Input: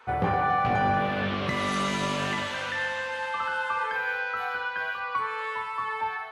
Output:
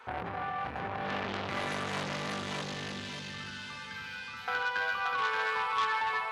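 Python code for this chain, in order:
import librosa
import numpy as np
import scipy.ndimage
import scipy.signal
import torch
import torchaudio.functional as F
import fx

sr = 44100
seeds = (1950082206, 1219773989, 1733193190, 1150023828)

y = fx.curve_eq(x, sr, hz=(250.0, 580.0, 5000.0, 8500.0), db=(0, -29, 2, -7), at=(2.03, 4.48))
y = fx.over_compress(y, sr, threshold_db=-29.0, ratio=-1.0)
y = fx.echo_feedback(y, sr, ms=578, feedback_pct=31, wet_db=-3.0)
y = fx.transformer_sat(y, sr, knee_hz=2400.0)
y = y * librosa.db_to_amplitude(-1.5)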